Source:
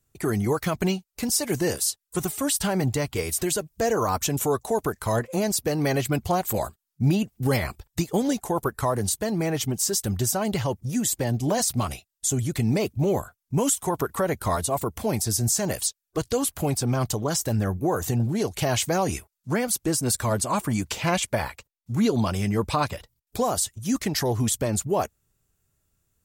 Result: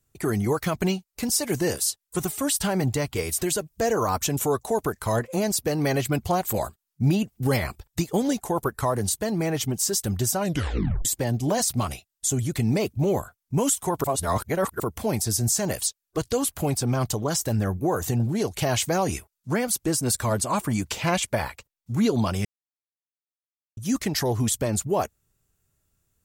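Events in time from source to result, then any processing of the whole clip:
0:10.39: tape stop 0.66 s
0:14.04–0:14.80: reverse
0:22.45–0:23.77: silence

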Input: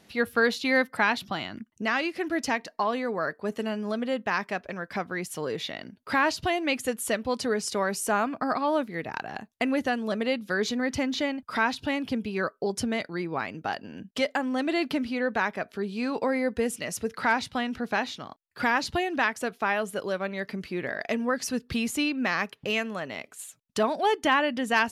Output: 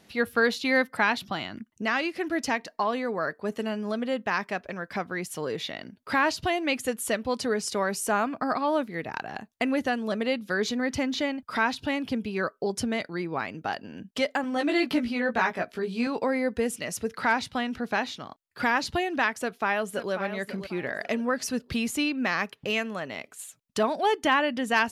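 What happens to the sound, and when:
0:14.42–0:16.07: double-tracking delay 17 ms −2.5 dB
0:19.38–0:20.12: delay throw 540 ms, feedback 30%, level −10.5 dB

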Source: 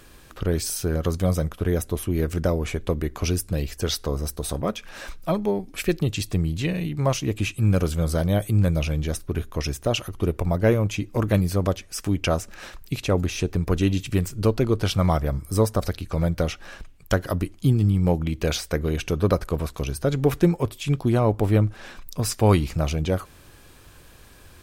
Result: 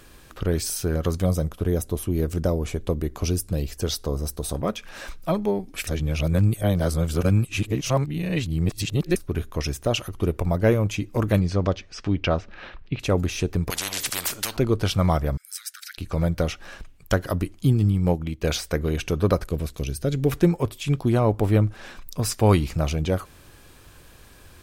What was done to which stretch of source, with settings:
0:01.25–0:04.55: dynamic equaliser 1,900 Hz, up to −7 dB, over −45 dBFS, Q 0.89
0:05.87–0:09.16: reverse
0:11.39–0:12.99: low-pass filter 6,700 Hz → 3,100 Hz 24 dB per octave
0:13.70–0:14.57: every bin compressed towards the loudest bin 10 to 1
0:15.37–0:15.98: Butterworth high-pass 1,400 Hz 96 dB per octave
0:17.84–0:18.44: expander for the loud parts, over −36 dBFS
0:19.46–0:20.32: parametric band 1,000 Hz −11 dB 1.3 octaves

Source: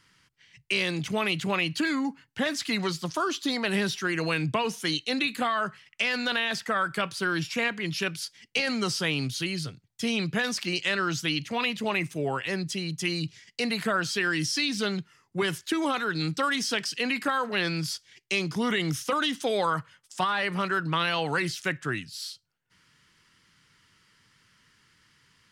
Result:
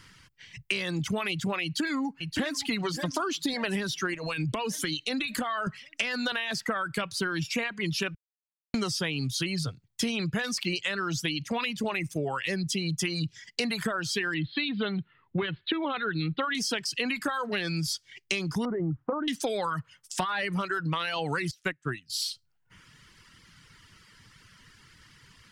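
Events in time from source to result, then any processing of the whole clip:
0:01.63–0:02.67: delay throw 570 ms, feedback 55%, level −12.5 dB
0:04.14–0:05.67: downward compressor 4 to 1, threshold −33 dBFS
0:08.15–0:08.74: silence
0:14.34–0:16.55: Butterworth low-pass 4,100 Hz 96 dB per octave
0:18.65–0:19.28: low-pass filter 1,000 Hz 24 dB per octave
0:21.51–0:22.10: expander for the loud parts 2.5 to 1, over −37 dBFS
whole clip: reverb reduction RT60 0.87 s; low-shelf EQ 86 Hz +11.5 dB; downward compressor 10 to 1, threshold −35 dBFS; level +8.5 dB

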